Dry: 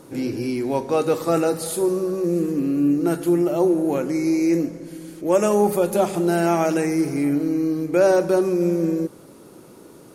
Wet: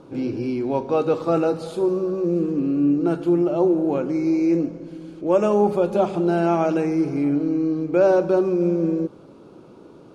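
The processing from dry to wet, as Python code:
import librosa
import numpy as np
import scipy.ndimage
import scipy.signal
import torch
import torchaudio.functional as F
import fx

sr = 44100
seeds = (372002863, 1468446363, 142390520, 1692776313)

y = scipy.signal.sosfilt(scipy.signal.butter(2, 3200.0, 'lowpass', fs=sr, output='sos'), x)
y = fx.peak_eq(y, sr, hz=1900.0, db=-10.5, octaves=0.39)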